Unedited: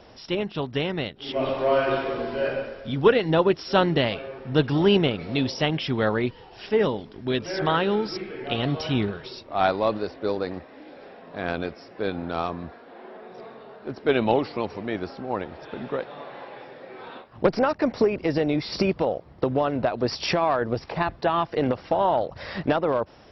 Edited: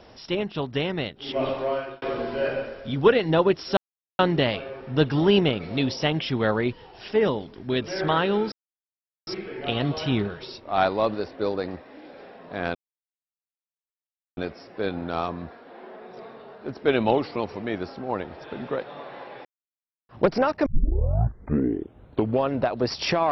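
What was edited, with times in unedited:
1.45–2.02 fade out
3.77 insert silence 0.42 s
8.1 insert silence 0.75 s
11.58 insert silence 1.62 s
16.66–17.3 mute
17.87 tape start 1.89 s

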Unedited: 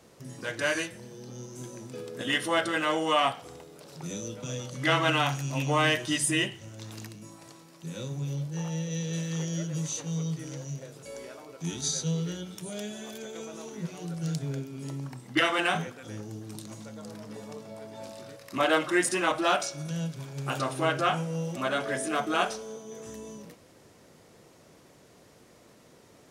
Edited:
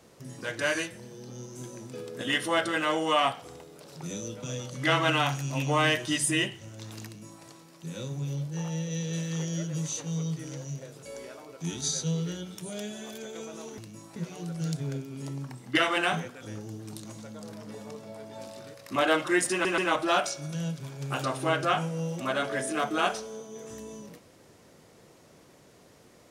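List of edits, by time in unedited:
7.06–7.44 copy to 13.78
19.14 stutter 0.13 s, 3 plays

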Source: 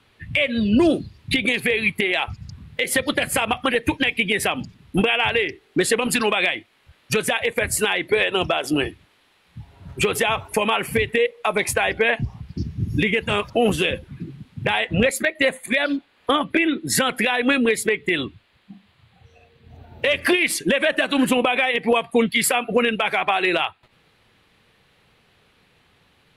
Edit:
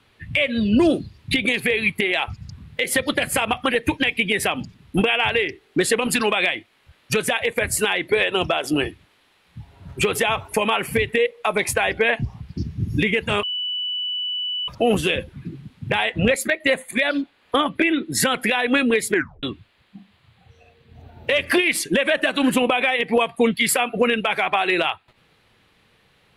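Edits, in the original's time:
13.43 add tone 2970 Hz -23 dBFS 1.25 s
17.87 tape stop 0.31 s

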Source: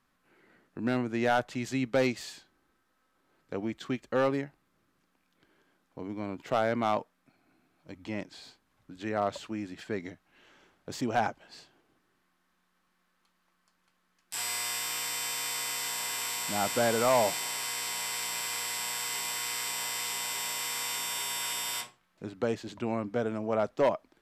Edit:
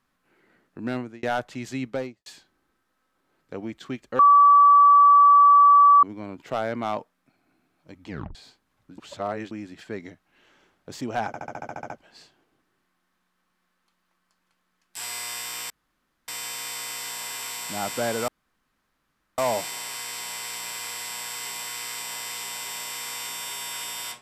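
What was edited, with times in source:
0.97–1.23 fade out
1.82–2.26 studio fade out
4.19–6.03 bleep 1150 Hz -10.5 dBFS
8.09 tape stop 0.26 s
8.98–9.51 reverse
11.27 stutter 0.07 s, 10 plays
15.07 insert room tone 0.58 s
17.07 insert room tone 1.10 s

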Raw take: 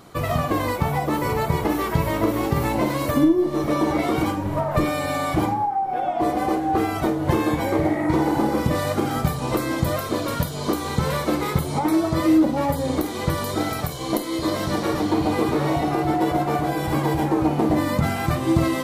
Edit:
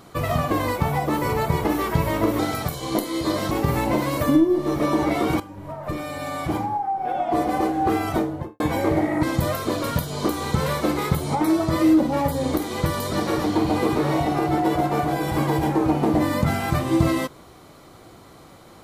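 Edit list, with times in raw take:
4.28–6.18 fade in linear, from -16 dB
7–7.48 studio fade out
8.11–9.67 cut
13.57–14.69 move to 2.39

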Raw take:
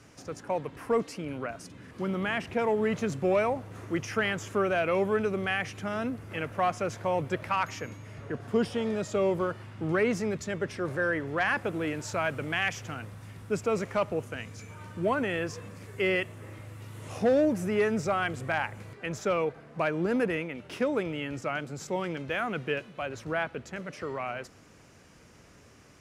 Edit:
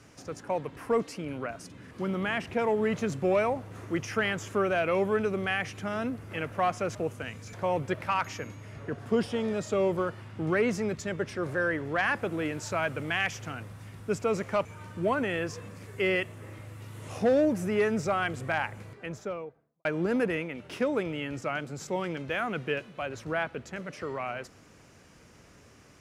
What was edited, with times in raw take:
14.07–14.65 move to 6.95
18.69–19.85 studio fade out

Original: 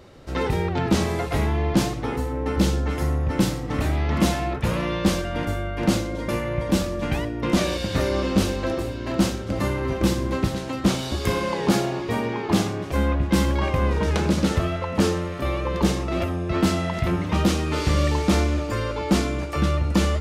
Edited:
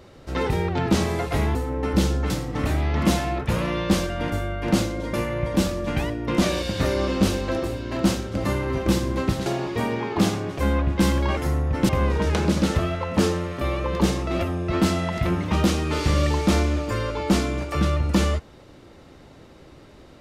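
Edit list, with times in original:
1.55–2.18 cut
2.93–3.45 move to 13.7
10.61–11.79 cut

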